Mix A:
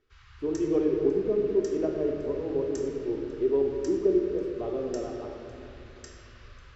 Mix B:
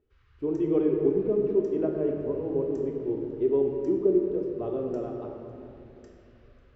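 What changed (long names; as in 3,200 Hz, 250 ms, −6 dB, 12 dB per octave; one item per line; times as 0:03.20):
background −12.0 dB
master: add bass and treble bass +5 dB, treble −9 dB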